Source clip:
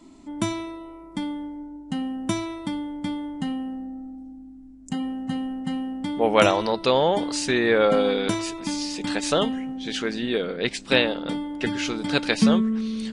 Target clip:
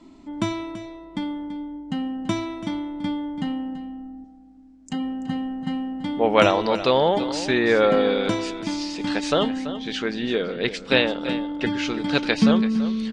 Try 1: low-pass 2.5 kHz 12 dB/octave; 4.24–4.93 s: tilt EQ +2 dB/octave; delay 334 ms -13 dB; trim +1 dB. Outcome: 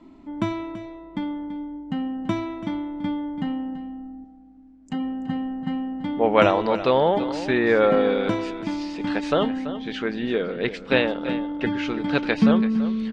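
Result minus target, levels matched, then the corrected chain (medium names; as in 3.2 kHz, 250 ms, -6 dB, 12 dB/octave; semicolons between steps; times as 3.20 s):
4 kHz band -5.5 dB
low-pass 5 kHz 12 dB/octave; 4.24–4.93 s: tilt EQ +2 dB/octave; delay 334 ms -13 dB; trim +1 dB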